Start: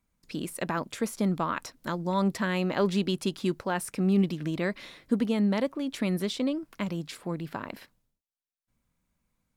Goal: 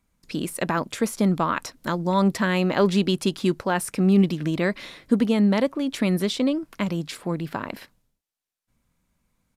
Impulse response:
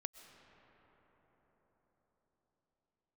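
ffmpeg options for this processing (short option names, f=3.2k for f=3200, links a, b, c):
-af "aresample=32000,aresample=44100,volume=6dB"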